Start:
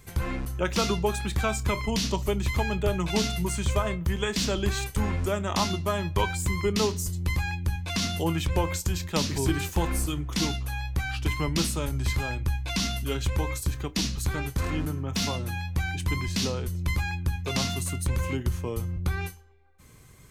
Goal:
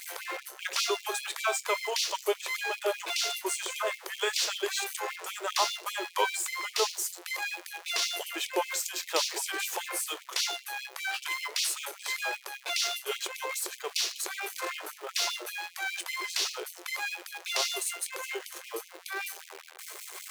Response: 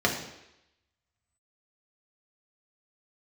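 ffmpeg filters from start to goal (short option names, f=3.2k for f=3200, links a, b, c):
-af "aeval=exprs='val(0)+0.5*0.0188*sgn(val(0))':c=same,afftfilt=real='re*gte(b*sr/1024,310*pow(2200/310,0.5+0.5*sin(2*PI*5.1*pts/sr)))':imag='im*gte(b*sr/1024,310*pow(2200/310,0.5+0.5*sin(2*PI*5.1*pts/sr)))':win_size=1024:overlap=0.75"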